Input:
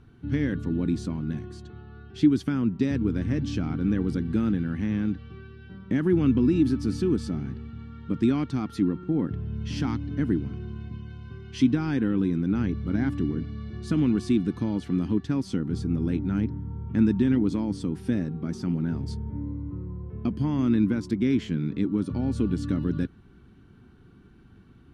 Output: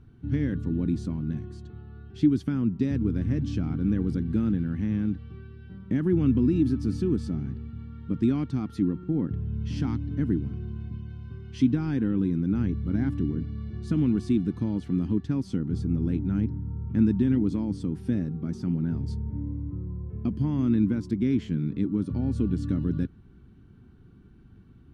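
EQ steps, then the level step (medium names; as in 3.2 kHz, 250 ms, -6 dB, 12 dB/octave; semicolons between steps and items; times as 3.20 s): bass shelf 310 Hz +9 dB; -6.5 dB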